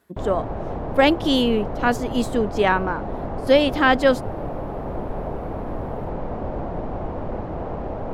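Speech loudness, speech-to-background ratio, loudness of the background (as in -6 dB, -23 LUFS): -20.5 LUFS, 10.0 dB, -30.5 LUFS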